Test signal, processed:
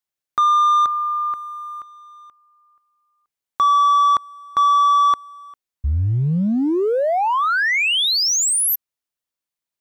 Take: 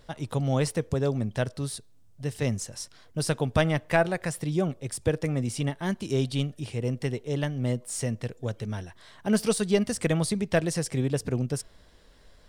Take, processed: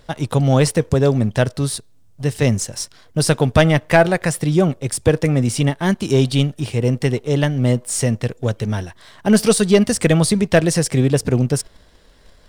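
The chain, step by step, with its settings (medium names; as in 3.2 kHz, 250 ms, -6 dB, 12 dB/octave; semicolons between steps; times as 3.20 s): waveshaping leveller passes 1; trim +7.5 dB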